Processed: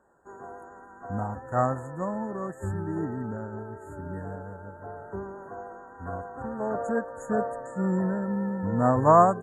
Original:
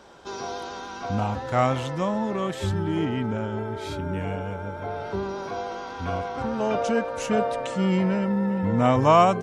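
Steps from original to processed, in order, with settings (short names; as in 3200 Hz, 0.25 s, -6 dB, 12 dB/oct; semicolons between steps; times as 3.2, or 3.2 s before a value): FFT band-reject 1900–6600 Hz; upward expander 1.5:1, over -44 dBFS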